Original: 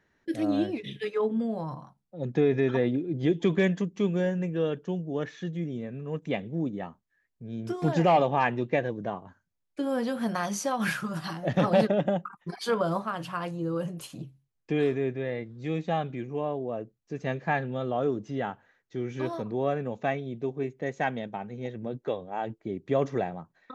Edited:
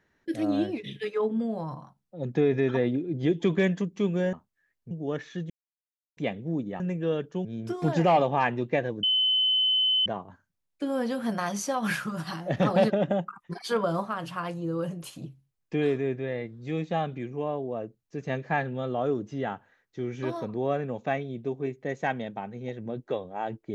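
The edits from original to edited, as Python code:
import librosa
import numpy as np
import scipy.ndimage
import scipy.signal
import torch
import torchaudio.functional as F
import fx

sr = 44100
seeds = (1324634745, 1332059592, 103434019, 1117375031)

y = fx.edit(x, sr, fx.swap(start_s=4.33, length_s=0.65, other_s=6.87, other_length_s=0.58),
    fx.silence(start_s=5.57, length_s=0.67),
    fx.insert_tone(at_s=9.03, length_s=1.03, hz=3040.0, db=-20.5), tone=tone)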